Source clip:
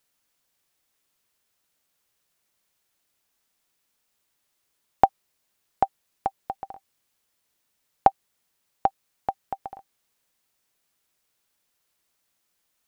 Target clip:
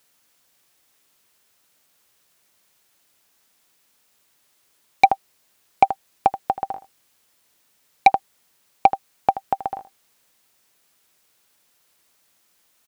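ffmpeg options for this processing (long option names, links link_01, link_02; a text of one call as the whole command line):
ffmpeg -i in.wav -filter_complex "[0:a]aecho=1:1:80:0.178,asplit=2[link_01][link_02];[link_02]aeval=exprs='0.891*sin(PI/2*3.16*val(0)/0.891)':channel_layout=same,volume=-5dB[link_03];[link_01][link_03]amix=inputs=2:normalize=0,lowshelf=frequency=70:gain=-8.5,volume=-1dB" out.wav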